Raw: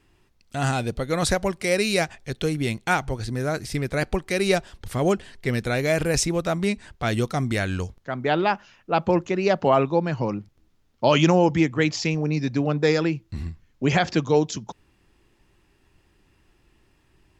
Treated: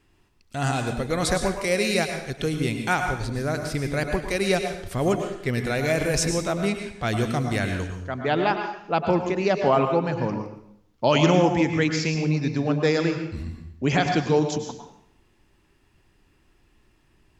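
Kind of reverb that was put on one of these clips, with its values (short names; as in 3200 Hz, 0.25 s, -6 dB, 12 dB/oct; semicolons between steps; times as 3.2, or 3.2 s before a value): plate-style reverb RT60 0.7 s, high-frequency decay 0.85×, pre-delay 90 ms, DRR 5 dB; gain -1.5 dB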